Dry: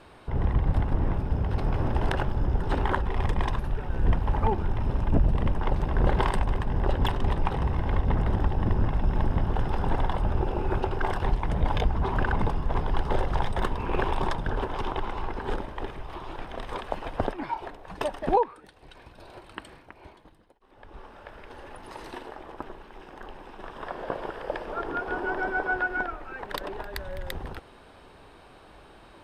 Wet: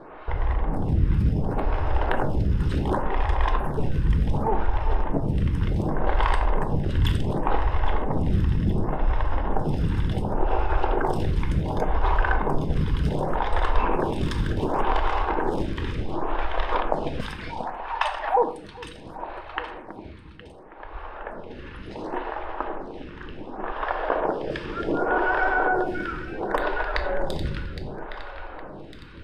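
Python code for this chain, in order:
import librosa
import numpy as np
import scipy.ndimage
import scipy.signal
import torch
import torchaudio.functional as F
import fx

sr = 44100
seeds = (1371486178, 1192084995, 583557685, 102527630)

p1 = fx.env_lowpass(x, sr, base_hz=2400.0, full_db=-23.0)
p2 = fx.steep_highpass(p1, sr, hz=740.0, slope=48, at=(17.19, 18.36), fade=0.02)
p3 = fx.over_compress(p2, sr, threshold_db=-30.0, ratio=-1.0)
p4 = p2 + F.gain(torch.from_numpy(p3), 2.0).numpy()
p5 = fx.clip_hard(p4, sr, threshold_db=-15.0, at=(14.28, 15.72))
p6 = p5 + fx.echo_alternate(p5, sr, ms=407, hz=1000.0, feedback_pct=66, wet_db=-7.0, dry=0)
p7 = fx.room_shoebox(p6, sr, seeds[0], volume_m3=260.0, walls='mixed', distance_m=0.54)
y = fx.stagger_phaser(p7, sr, hz=0.68)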